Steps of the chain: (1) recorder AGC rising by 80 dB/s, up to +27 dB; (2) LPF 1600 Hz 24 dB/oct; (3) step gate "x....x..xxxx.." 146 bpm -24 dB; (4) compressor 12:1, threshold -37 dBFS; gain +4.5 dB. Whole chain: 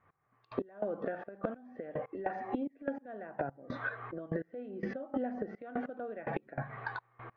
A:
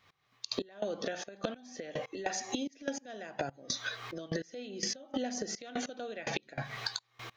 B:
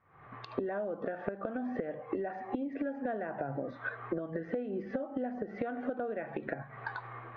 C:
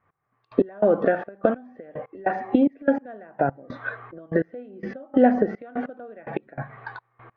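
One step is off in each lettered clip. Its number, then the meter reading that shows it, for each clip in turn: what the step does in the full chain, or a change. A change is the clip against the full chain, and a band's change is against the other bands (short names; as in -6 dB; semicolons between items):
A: 2, 4 kHz band +26.0 dB; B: 3, 125 Hz band -2.0 dB; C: 4, mean gain reduction 7.0 dB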